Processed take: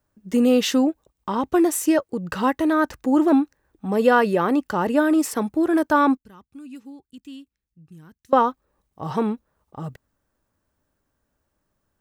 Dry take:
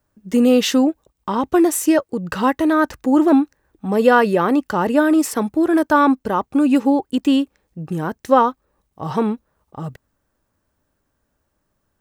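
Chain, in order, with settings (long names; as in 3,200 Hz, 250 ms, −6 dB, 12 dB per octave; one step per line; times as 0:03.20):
0:06.17–0:08.33: guitar amp tone stack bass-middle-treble 6-0-2
level −3.5 dB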